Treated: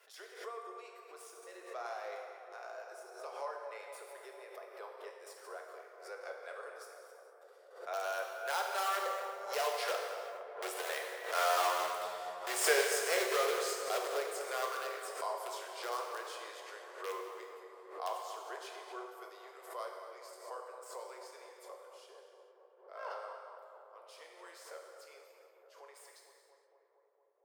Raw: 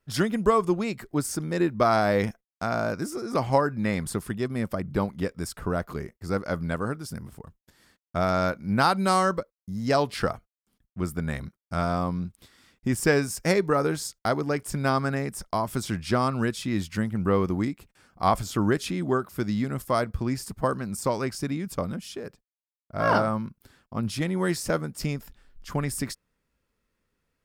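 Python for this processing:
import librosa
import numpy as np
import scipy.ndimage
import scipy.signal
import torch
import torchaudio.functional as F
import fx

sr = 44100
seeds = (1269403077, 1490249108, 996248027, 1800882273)

p1 = fx.tracing_dist(x, sr, depth_ms=0.043)
p2 = fx.doppler_pass(p1, sr, speed_mps=12, closest_m=7.7, pass_at_s=11.8)
p3 = (np.mod(10.0 ** (29.5 / 20.0) * p2 + 1.0, 2.0) - 1.0) / 10.0 ** (29.5 / 20.0)
p4 = p2 + (p3 * librosa.db_to_amplitude(-4.0))
p5 = scipy.signal.sosfilt(scipy.signal.butter(12, 410.0, 'highpass', fs=sr, output='sos'), p4)
p6 = fx.peak_eq(p5, sr, hz=3000.0, db=2.0, octaves=0.77)
p7 = fx.echo_tape(p6, sr, ms=230, feedback_pct=86, wet_db=-8.5, lp_hz=1700.0, drive_db=19.0, wow_cents=14)
p8 = fx.rev_gated(p7, sr, seeds[0], gate_ms=490, shape='falling', drr_db=1.0)
p9 = fx.pre_swell(p8, sr, db_per_s=95.0)
y = p9 * librosa.db_to_amplitude(-2.5)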